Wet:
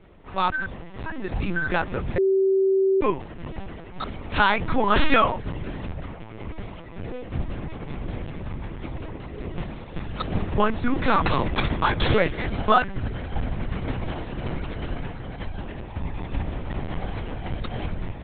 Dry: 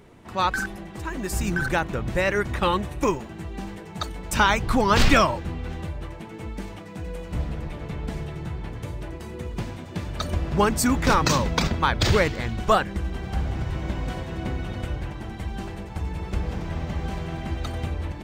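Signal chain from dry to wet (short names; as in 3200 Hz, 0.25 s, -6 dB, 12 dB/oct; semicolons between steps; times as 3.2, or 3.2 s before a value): 12.41–12.95 comb 4 ms, depth 77%; LPC vocoder at 8 kHz pitch kept; 2.18–3.01 bleep 385 Hz -16.5 dBFS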